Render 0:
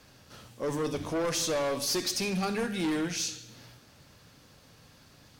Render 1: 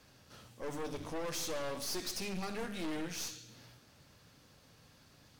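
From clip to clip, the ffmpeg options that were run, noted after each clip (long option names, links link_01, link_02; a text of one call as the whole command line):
ffmpeg -i in.wav -af "aeval=exprs='clip(val(0),-1,0.00841)':channel_layout=same,volume=-5.5dB" out.wav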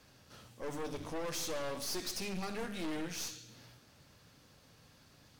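ffmpeg -i in.wav -af anull out.wav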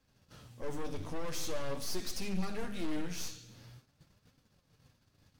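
ffmpeg -i in.wav -af "agate=range=-13dB:threshold=-60dB:ratio=16:detection=peak,lowshelf=frequency=170:gain=9.5,flanger=delay=3.6:depth=8.5:regen=64:speed=0.46:shape=triangular,volume=2.5dB" out.wav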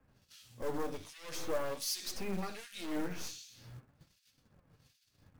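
ffmpeg -i in.wav -filter_complex "[0:a]acrossover=split=280|1100[link_01][link_02][link_03];[link_01]acompressor=threshold=-42dB:ratio=6[link_04];[link_04][link_02][link_03]amix=inputs=3:normalize=0,acrossover=split=2200[link_05][link_06];[link_05]aeval=exprs='val(0)*(1-1/2+1/2*cos(2*PI*1.3*n/s))':channel_layout=same[link_07];[link_06]aeval=exprs='val(0)*(1-1/2-1/2*cos(2*PI*1.3*n/s))':channel_layout=same[link_08];[link_07][link_08]amix=inputs=2:normalize=0,acrusher=bits=5:mode=log:mix=0:aa=0.000001,volume=5.5dB" out.wav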